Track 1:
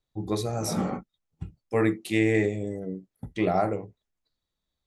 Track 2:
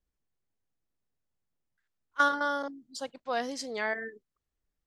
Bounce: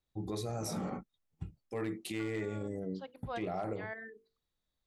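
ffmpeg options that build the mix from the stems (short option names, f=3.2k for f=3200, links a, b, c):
-filter_complex "[0:a]volume=-4dB,asplit=2[a][b];[1:a]lowpass=f=3.9k:w=0.5412,lowpass=f=3.9k:w=1.3066,bandreject=f=50:t=h:w=6,bandreject=f=100:t=h:w=6,bandreject=f=150:t=h:w=6,bandreject=f=200:t=h:w=6,bandreject=f=250:t=h:w=6,bandreject=f=300:t=h:w=6,bandreject=f=350:t=h:w=6,bandreject=f=400:t=h:w=6,bandreject=f=450:t=h:w=6,bandreject=f=500:t=h:w=6,volume=-6.5dB[c];[b]apad=whole_len=214555[d];[c][d]sidechaincompress=threshold=-39dB:ratio=3:attack=16:release=346[e];[a][e]amix=inputs=2:normalize=0,asoftclip=type=hard:threshold=-18.5dB,alimiter=level_in=4.5dB:limit=-24dB:level=0:latency=1:release=76,volume=-4.5dB"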